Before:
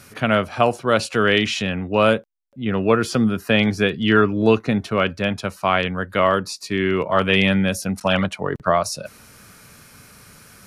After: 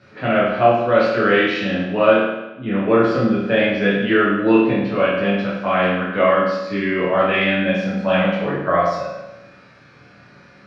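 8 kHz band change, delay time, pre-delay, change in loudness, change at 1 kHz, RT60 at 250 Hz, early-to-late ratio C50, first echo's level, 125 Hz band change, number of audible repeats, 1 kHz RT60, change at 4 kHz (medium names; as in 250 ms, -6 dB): under -15 dB, no echo, 7 ms, +2.0 dB, +2.0 dB, 0.95 s, 0.5 dB, no echo, -1.5 dB, no echo, 0.95 s, -4.0 dB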